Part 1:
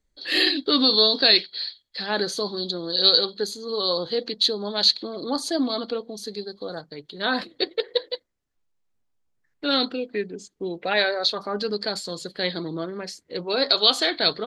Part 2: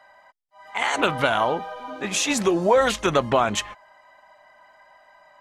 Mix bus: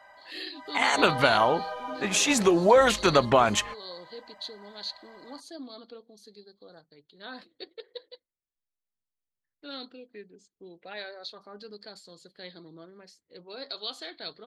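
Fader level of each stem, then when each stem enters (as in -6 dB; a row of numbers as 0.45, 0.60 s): -18.0, -0.5 dB; 0.00, 0.00 s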